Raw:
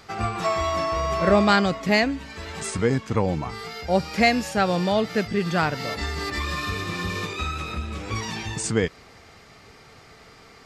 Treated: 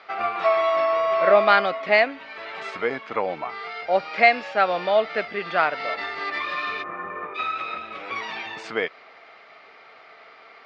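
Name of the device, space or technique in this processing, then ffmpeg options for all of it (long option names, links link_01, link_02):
phone earpiece: -filter_complex "[0:a]asplit=3[link_01][link_02][link_03];[link_01]afade=type=out:start_time=6.82:duration=0.02[link_04];[link_02]lowpass=frequency=1600:width=0.5412,lowpass=frequency=1600:width=1.3066,afade=type=in:start_time=6.82:duration=0.02,afade=type=out:start_time=7.34:duration=0.02[link_05];[link_03]afade=type=in:start_time=7.34:duration=0.02[link_06];[link_04][link_05][link_06]amix=inputs=3:normalize=0,highpass=490,equalizer=frequency=650:width_type=q:width=4:gain=7,equalizer=frequency=1300:width_type=q:width=4:gain=5,equalizer=frequency=2200:width_type=q:width=4:gain=5,lowpass=frequency=3800:width=0.5412,lowpass=frequency=3800:width=1.3066"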